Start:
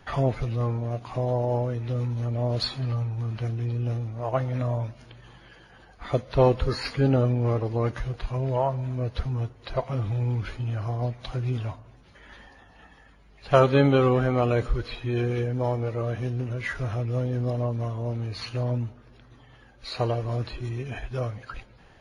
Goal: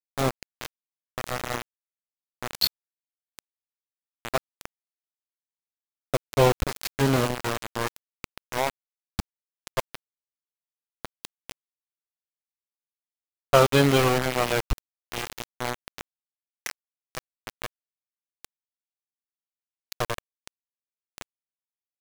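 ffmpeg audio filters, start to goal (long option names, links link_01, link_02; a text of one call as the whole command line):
ffmpeg -i in.wav -af "highshelf=frequency=2400:gain=9,aeval=exprs='val(0)*gte(abs(val(0)),0.112)':channel_layout=same" out.wav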